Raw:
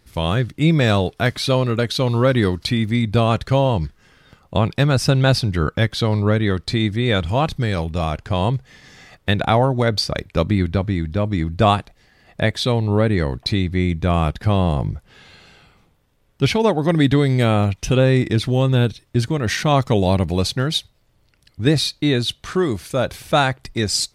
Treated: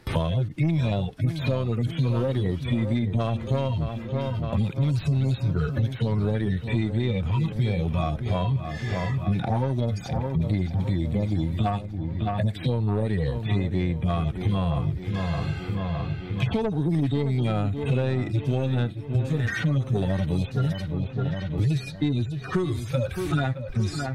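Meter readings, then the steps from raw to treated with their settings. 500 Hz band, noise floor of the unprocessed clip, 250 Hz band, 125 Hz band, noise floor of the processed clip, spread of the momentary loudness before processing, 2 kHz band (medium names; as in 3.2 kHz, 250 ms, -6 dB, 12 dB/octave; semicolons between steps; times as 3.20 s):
-10.0 dB, -60 dBFS, -6.5 dB, -4.0 dB, -36 dBFS, 6 LU, -10.5 dB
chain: harmonic-percussive separation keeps harmonic; gate with hold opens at -44 dBFS; in parallel at +3 dB: compression, threshold -25 dBFS, peak gain reduction 14 dB; on the sum: saturation -9.5 dBFS, distortion -16 dB; on a send: feedback echo behind a low-pass 615 ms, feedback 48%, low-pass 3.5 kHz, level -11.5 dB; on the sum: three bands compressed up and down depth 100%; trim -7.5 dB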